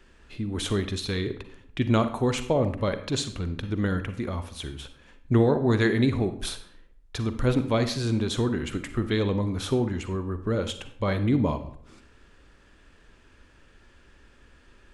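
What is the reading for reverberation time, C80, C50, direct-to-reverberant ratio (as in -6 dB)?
0.65 s, 14.5 dB, 11.0 dB, 9.5 dB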